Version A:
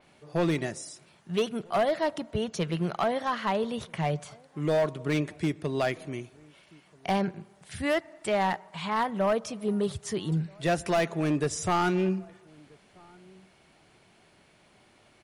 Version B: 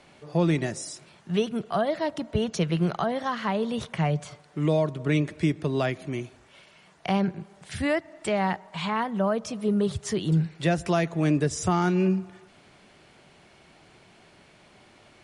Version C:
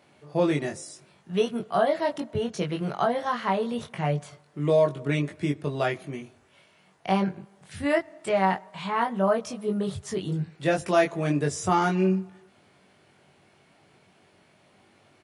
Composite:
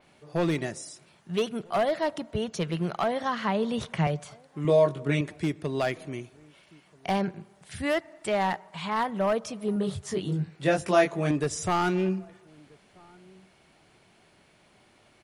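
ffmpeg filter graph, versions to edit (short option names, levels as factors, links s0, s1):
-filter_complex "[2:a]asplit=2[s0][s1];[0:a]asplit=4[s2][s3][s4][s5];[s2]atrim=end=3.202[s6];[1:a]atrim=start=3.198:end=4.072[s7];[s3]atrim=start=4.068:end=4.652[s8];[s0]atrim=start=4.648:end=5.212[s9];[s4]atrim=start=5.208:end=9.762[s10];[s1]atrim=start=9.758:end=11.312[s11];[s5]atrim=start=11.308[s12];[s6][s7]acrossfade=d=0.004:c1=hsin:c2=hsin[s13];[s13][s8]acrossfade=d=0.004:c1=hsin:c2=hsin[s14];[s14][s9]acrossfade=d=0.004:c1=hsin:c2=hsin[s15];[s15][s10]acrossfade=d=0.004:c1=hsin:c2=hsin[s16];[s16][s11]acrossfade=d=0.004:c1=hsin:c2=hsin[s17];[s17][s12]acrossfade=d=0.004:c1=hsin:c2=hsin"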